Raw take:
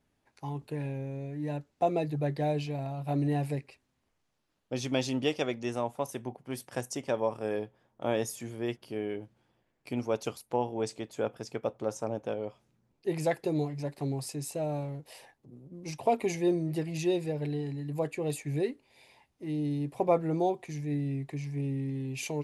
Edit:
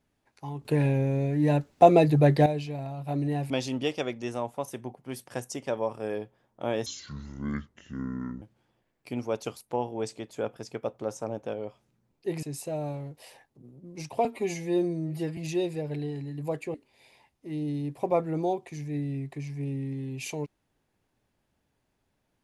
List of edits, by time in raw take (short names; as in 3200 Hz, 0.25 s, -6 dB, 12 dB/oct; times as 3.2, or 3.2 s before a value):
0.65–2.46 gain +11 dB
3.5–4.91 cut
8.27–9.22 speed 61%
13.23–14.31 cut
16.13–16.88 stretch 1.5×
18.25–18.71 cut